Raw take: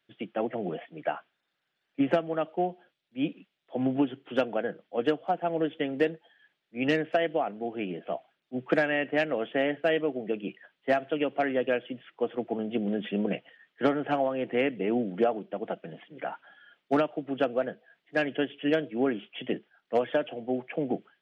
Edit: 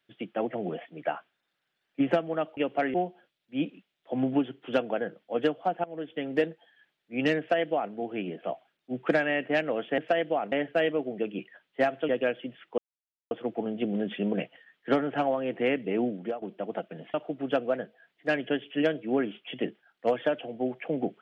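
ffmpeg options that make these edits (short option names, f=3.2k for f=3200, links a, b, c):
-filter_complex "[0:a]asplit=10[a][b][c][d][e][f][g][h][i][j];[a]atrim=end=2.572[k];[b]atrim=start=11.178:end=11.552[l];[c]atrim=start=2.568:end=5.47,asetpts=PTS-STARTPTS,afade=t=out:st=2.898:d=0.004:c=hsin:silence=0.141254[m];[d]atrim=start=5.47:end=9.612,asetpts=PTS-STARTPTS,afade=t=in:d=0.54:silence=0.141254[n];[e]atrim=start=7.018:end=7.562[o];[f]atrim=start=9.608:end=11.182[p];[g]atrim=start=11.548:end=12.24,asetpts=PTS-STARTPTS,afade=t=out:st=0.688:d=0.004:c=hsin,apad=pad_dur=0.53[q];[h]atrim=start=12.24:end=15.35,asetpts=PTS-STARTPTS,afade=t=in:d=0.004:c=hsin,afade=t=out:st=2.7:d=0.41:silence=0.177828[r];[i]atrim=start=15.35:end=16.072,asetpts=PTS-STARTPTS,afade=t=in:d=0.004:c=hsin:silence=0.177828[s];[j]atrim=start=17.018[t];[k][l]acrossfade=d=0.004:c1=hsin:c2=hsin[u];[m][n]concat=n=2:v=0:a=1[v];[u][v]acrossfade=d=0.004:c1=hsin:c2=hsin[w];[w][o]acrossfade=d=0.004:c1=hsin:c2=hsin[x];[x][p]acrossfade=d=0.004:c1=hsin:c2=hsin[y];[q][r][s]concat=n=3:v=0:a=1[z];[y][z]acrossfade=d=0.004:c1=hsin:c2=hsin[aa];[aa][t]acrossfade=d=0.004:c1=hsin:c2=hsin"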